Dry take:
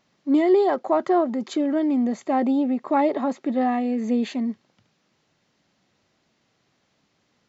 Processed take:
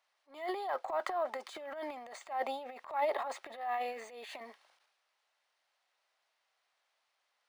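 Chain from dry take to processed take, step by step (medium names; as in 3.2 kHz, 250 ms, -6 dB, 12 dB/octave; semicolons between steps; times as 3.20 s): high-pass 670 Hz 24 dB/octave; transient shaper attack -9 dB, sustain +11 dB; decimation joined by straight lines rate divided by 3×; trim -8 dB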